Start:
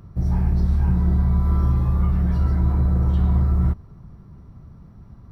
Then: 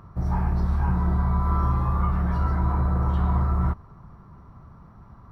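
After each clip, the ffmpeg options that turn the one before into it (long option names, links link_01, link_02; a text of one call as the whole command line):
ffmpeg -i in.wav -af "equalizer=frequency=1100:width_type=o:width=1.6:gain=14,volume=-4.5dB" out.wav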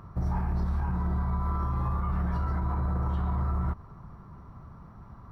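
ffmpeg -i in.wav -af "alimiter=limit=-21.5dB:level=0:latency=1:release=85" out.wav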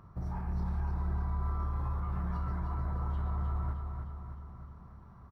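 ffmpeg -i in.wav -af "aecho=1:1:307|614|921|1228|1535|1842|2149:0.531|0.292|0.161|0.0883|0.0486|0.0267|0.0147,volume=-8dB" out.wav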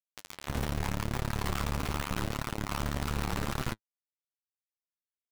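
ffmpeg -i in.wav -af "acrusher=bits=4:mix=0:aa=0.000001,flanger=delay=7.5:depth=7.3:regen=37:speed=0.83:shape=triangular,aeval=exprs='0.0668*(cos(1*acos(clip(val(0)/0.0668,-1,1)))-cos(1*PI/2))+0.0188*(cos(6*acos(clip(val(0)/0.0668,-1,1)))-cos(6*PI/2))':channel_layout=same" out.wav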